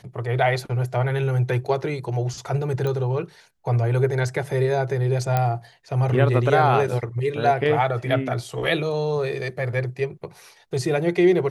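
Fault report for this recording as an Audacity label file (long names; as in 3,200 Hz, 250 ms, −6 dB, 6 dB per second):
2.870000	2.870000	click −16 dBFS
5.370000	5.370000	click −9 dBFS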